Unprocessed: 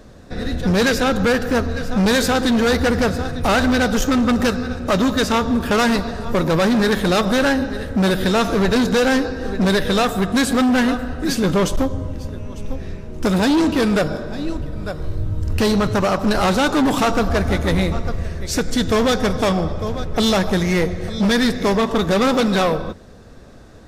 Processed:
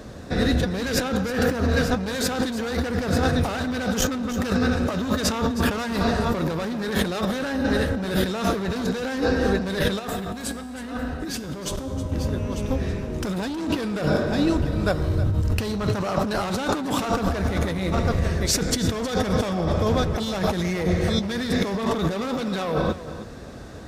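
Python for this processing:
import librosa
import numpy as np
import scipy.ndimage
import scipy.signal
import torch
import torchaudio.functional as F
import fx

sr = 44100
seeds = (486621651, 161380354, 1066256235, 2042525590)

y = scipy.signal.sosfilt(scipy.signal.butter(2, 48.0, 'highpass', fs=sr, output='sos'), x)
y = fx.over_compress(y, sr, threshold_db=-24.0, ratio=-1.0)
y = fx.comb_fb(y, sr, f0_hz=66.0, decay_s=1.7, harmonics='all', damping=0.0, mix_pct=60, at=(9.99, 12.12))
y = y + 10.0 ** (-14.0 / 20.0) * np.pad(y, (int(316 * sr / 1000.0), 0))[:len(y)]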